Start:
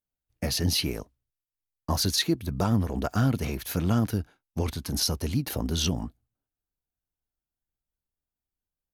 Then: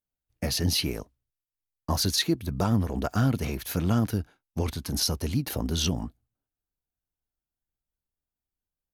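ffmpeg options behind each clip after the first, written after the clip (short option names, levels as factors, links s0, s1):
-af anull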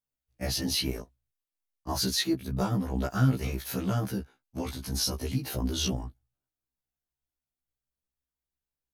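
-af "afftfilt=real='re*1.73*eq(mod(b,3),0)':imag='im*1.73*eq(mod(b,3),0)':win_size=2048:overlap=0.75"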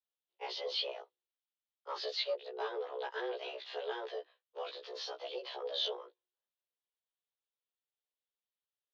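-af "asoftclip=type=tanh:threshold=0.0944,aexciter=amount=3.1:drive=7.1:freq=2800,highpass=f=180:t=q:w=0.5412,highpass=f=180:t=q:w=1.307,lowpass=f=3400:t=q:w=0.5176,lowpass=f=3400:t=q:w=0.7071,lowpass=f=3400:t=q:w=1.932,afreqshift=240,volume=0.473"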